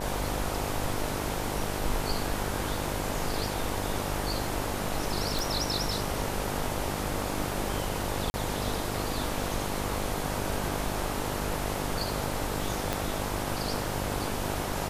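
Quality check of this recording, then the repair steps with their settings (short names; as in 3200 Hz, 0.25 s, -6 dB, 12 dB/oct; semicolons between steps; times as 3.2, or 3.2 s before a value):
buzz 50 Hz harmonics 19 -35 dBFS
5.39 pop
8.3–8.34 gap 40 ms
12.93 pop -12 dBFS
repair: de-click; de-hum 50 Hz, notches 19; interpolate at 8.3, 40 ms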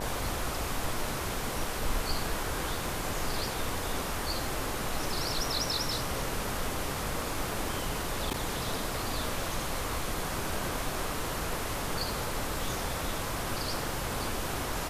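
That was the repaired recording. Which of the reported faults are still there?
12.93 pop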